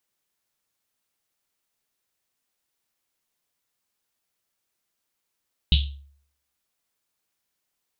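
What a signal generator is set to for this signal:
drum after Risset, pitch 70 Hz, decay 0.59 s, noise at 3,400 Hz, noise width 1,200 Hz, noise 30%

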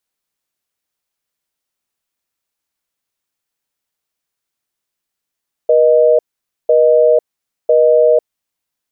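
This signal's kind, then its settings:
call progress tone busy tone, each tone −9.5 dBFS 2.66 s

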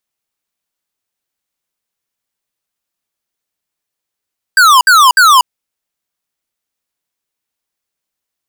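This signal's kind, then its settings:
repeated falling chirps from 1,600 Hz, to 960 Hz, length 0.24 s square, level −5.5 dB, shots 3, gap 0.06 s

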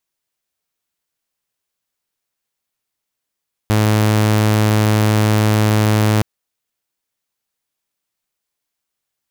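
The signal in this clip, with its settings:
tone saw 107 Hz −9 dBFS 2.52 s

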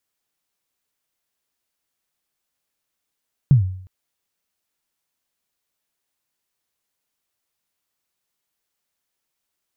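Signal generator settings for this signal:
synth kick length 0.36 s, from 150 Hz, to 93 Hz, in 118 ms, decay 0.61 s, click off, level −6 dB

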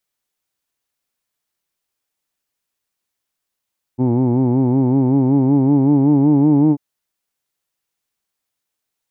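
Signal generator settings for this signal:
vowel by formant synthesis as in who'd, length 2.79 s, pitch 122 Hz, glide +3.5 semitones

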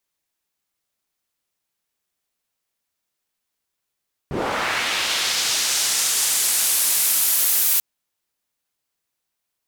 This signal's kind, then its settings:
filter sweep on noise pink, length 3.49 s bandpass, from 120 Hz, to 15,000 Hz, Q 1, linear, gain ramp +9.5 dB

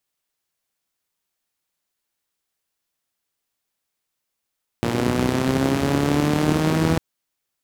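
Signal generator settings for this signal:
pulse-train model of a four-cylinder engine, changing speed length 2.15 s, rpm 3,500, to 4,900, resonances 100/170/260 Hz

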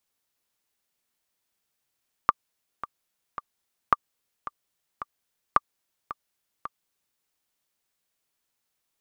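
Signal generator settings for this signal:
click track 110 BPM, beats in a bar 3, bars 3, 1,180 Hz, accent 15.5 dB −4 dBFS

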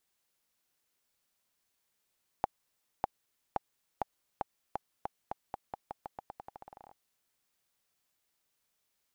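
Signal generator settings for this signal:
bouncing ball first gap 0.60 s, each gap 0.87, 804 Hz, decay 19 ms −14 dBFS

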